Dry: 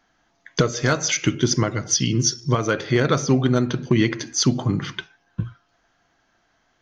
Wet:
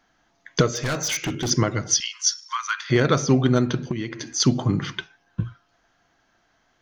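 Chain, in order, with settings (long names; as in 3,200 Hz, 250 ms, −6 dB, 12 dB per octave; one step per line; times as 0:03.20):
0:00.75–0:01.50: hard clipping −22 dBFS, distortion −13 dB
0:02.00–0:02.90: Butterworth high-pass 950 Hz 96 dB per octave
0:03.88–0:04.40: downward compressor 12 to 1, threshold −24 dBFS, peak gain reduction 12 dB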